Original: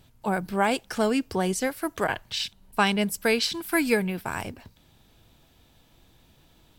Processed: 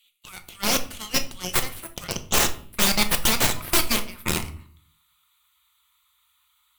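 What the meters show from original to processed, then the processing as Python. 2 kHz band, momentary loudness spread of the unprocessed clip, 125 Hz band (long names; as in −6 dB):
+0.5 dB, 7 LU, +1.5 dB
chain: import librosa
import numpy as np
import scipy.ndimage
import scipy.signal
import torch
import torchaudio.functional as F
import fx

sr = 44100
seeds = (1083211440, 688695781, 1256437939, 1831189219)

p1 = scipy.signal.sosfilt(scipy.signal.cheby2(4, 60, [160.0, 520.0], 'bandstop', fs=sr, output='sos'), x)
p2 = fx.high_shelf(p1, sr, hz=9600.0, db=-6.5)
p3 = fx.filter_sweep_highpass(p2, sr, from_hz=2800.0, to_hz=290.0, start_s=2.36, end_s=5.42, q=4.3)
p4 = fx.peak_eq(p3, sr, hz=2700.0, db=-15.0, octaves=0.76)
p5 = fx.level_steps(p4, sr, step_db=19)
p6 = p4 + F.gain(torch.from_numpy(p5), 0.5).numpy()
p7 = (np.mod(10.0 ** (22.0 / 20.0) * p6 + 1.0, 2.0) - 1.0) / 10.0 ** (22.0 / 20.0)
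p8 = fx.comb_fb(p7, sr, f0_hz=65.0, decay_s=0.66, harmonics='all', damping=0.0, mix_pct=50)
p9 = fx.hpss(p8, sr, part='percussive', gain_db=5)
p10 = fx.fixed_phaser(p9, sr, hz=1100.0, stages=8)
p11 = fx.cheby_harmonics(p10, sr, harmonics=(4, 8), levels_db=(-6, -7), full_scale_db=-16.5)
p12 = fx.room_shoebox(p11, sr, seeds[0], volume_m3=450.0, walls='furnished', distance_m=0.88)
y = F.gain(torch.from_numpy(p12), 5.5).numpy()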